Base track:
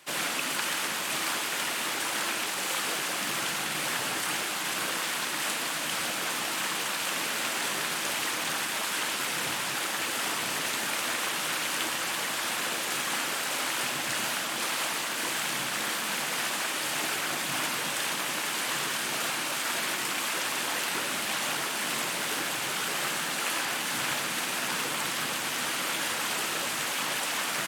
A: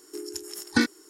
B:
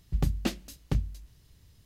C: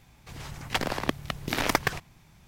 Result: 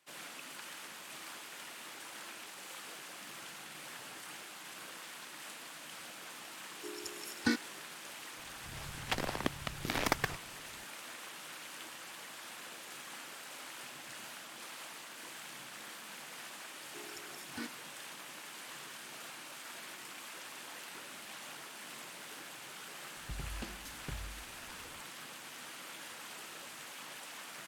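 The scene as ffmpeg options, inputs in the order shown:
ffmpeg -i bed.wav -i cue0.wav -i cue1.wav -i cue2.wav -filter_complex "[1:a]asplit=2[link_01][link_02];[0:a]volume=-17.5dB[link_03];[link_02]alimiter=limit=-16dB:level=0:latency=1:release=71[link_04];[2:a]acompressor=threshold=-33dB:ratio=6:attack=3.2:release=140:knee=1:detection=peak[link_05];[link_01]atrim=end=1.09,asetpts=PTS-STARTPTS,volume=-9dB,afade=type=in:duration=0.004:curve=hsin,afade=type=out:start_time=1.086:duration=0.004:curve=hsin,adelay=6700[link_06];[3:a]atrim=end=2.47,asetpts=PTS-STARTPTS,volume=-7dB,afade=type=in:duration=0.004:curve=hsin,afade=type=out:start_time=2.466:duration=0.004:curve=hsin,adelay=8370[link_07];[link_04]atrim=end=1.09,asetpts=PTS-STARTPTS,volume=-16dB,afade=type=in:duration=0.004:curve=hsin,afade=type=out:start_time=1.086:duration=0.004:curve=hsin,adelay=16810[link_08];[link_05]atrim=end=1.85,asetpts=PTS-STARTPTS,volume=-5.5dB,afade=type=in:duration=0.004:curve=hsin,afade=type=out:start_time=1.846:duration=0.004:curve=hsin,adelay=23170[link_09];[link_03][link_06][link_07][link_08][link_09]amix=inputs=5:normalize=0" out.wav

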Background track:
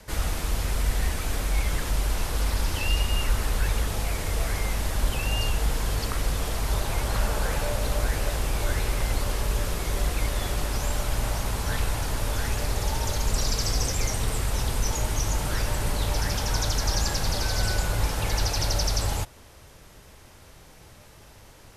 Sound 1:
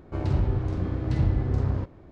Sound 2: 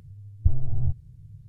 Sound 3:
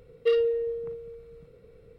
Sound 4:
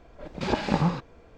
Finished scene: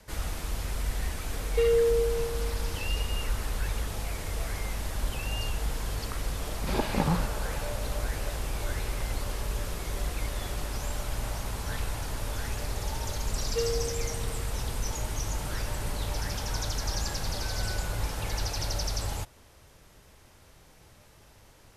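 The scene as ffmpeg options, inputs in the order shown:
ffmpeg -i bed.wav -i cue0.wav -i cue1.wav -i cue2.wav -i cue3.wav -filter_complex "[3:a]asplit=2[link_01][link_02];[0:a]volume=-6dB[link_03];[link_01]alimiter=level_in=22dB:limit=-1dB:release=50:level=0:latency=1,atrim=end=1.98,asetpts=PTS-STARTPTS,volume=-17.5dB,afade=type=in:duration=0.004:curve=hsin,afade=type=out:start_time=1.976:duration=0.004:curve=hsin,adelay=1320[link_04];[4:a]atrim=end=1.37,asetpts=PTS-STARTPTS,volume=-3.5dB,afade=type=in:duration=0.004:curve=hsin,afade=type=out:start_time=1.366:duration=0.004:curve=hsin,adelay=276066S[link_05];[link_02]atrim=end=1.98,asetpts=PTS-STARTPTS,volume=-7.5dB,afade=type=in:duration=0.004:curve=hsin,afade=type=out:start_time=1.976:duration=0.004:curve=hsin,adelay=13300[link_06];[link_03][link_04][link_05][link_06]amix=inputs=4:normalize=0" out.wav

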